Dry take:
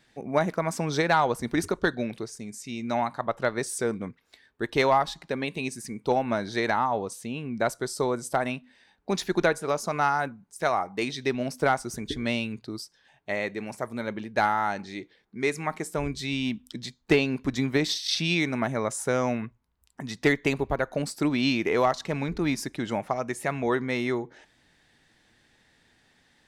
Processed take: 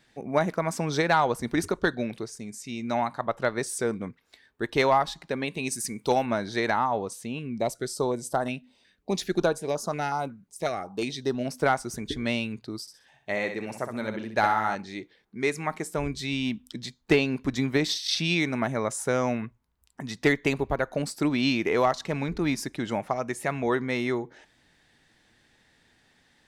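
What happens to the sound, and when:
0:05.66–0:06.25: high-shelf EQ 4,400 Hz → 2,300 Hz +11 dB
0:07.39–0:11.45: notch on a step sequencer 5.5 Hz 840–2,300 Hz
0:12.81–0:14.75: repeating echo 64 ms, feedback 32%, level −7.5 dB

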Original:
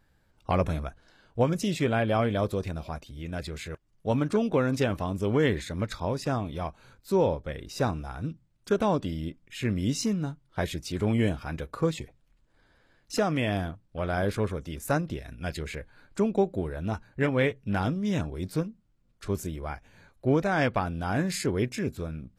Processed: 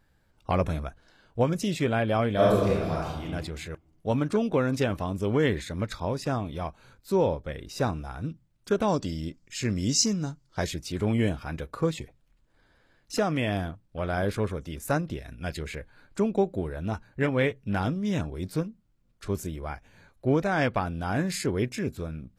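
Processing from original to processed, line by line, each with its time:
0:02.33–0:03.23: thrown reverb, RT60 1.1 s, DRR −6.5 dB
0:08.88–0:10.71: flat-topped bell 5,800 Hz +11 dB 1 octave

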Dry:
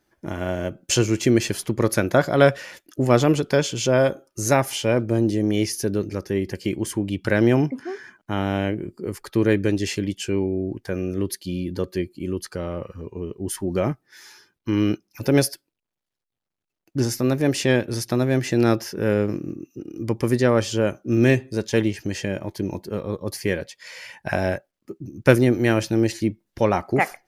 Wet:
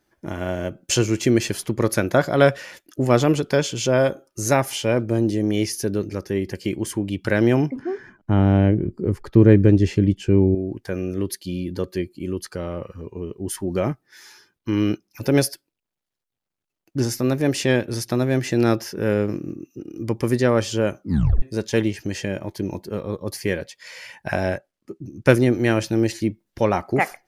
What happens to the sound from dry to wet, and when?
0:07.76–0:10.55: spectral tilt −3.5 dB per octave
0:21.02: tape stop 0.40 s
0:24.33–0:25.84: low-pass filter 12,000 Hz

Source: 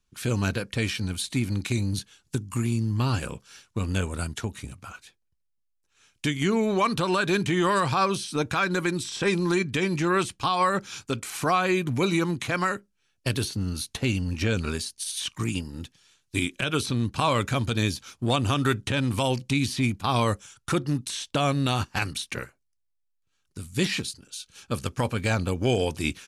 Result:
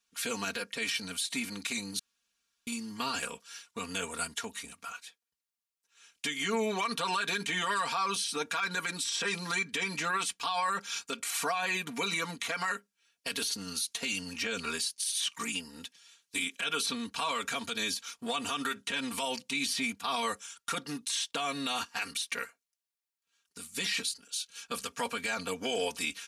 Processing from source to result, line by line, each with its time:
0:01.99–0:02.67: fill with room tone
0:13.51–0:14.33: parametric band 7,600 Hz +5.5 dB 2.3 octaves
whole clip: high-pass filter 1,200 Hz 6 dB per octave; comb filter 4.3 ms, depth 95%; brickwall limiter −22 dBFS

